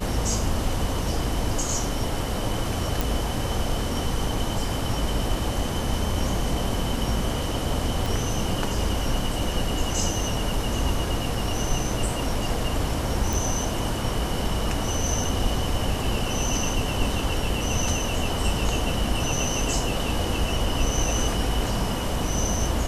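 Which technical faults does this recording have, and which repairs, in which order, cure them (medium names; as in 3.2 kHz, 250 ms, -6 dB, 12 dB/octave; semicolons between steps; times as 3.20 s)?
3.01 s: pop
8.06 s: pop
13.33 s: pop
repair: de-click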